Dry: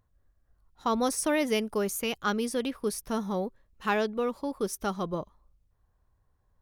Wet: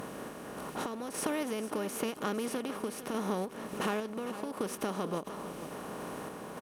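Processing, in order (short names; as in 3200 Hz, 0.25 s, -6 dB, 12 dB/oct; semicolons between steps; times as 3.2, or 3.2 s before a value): per-bin compression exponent 0.4; HPF 120 Hz 12 dB/oct; low shelf 480 Hz +7.5 dB; compressor 4:1, threshold -32 dBFS, peak gain reduction 13.5 dB; random-step tremolo 3.5 Hz; on a send: feedback echo 0.454 s, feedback 38%, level -12.5 dB; on the sum: ending taper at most 270 dB/s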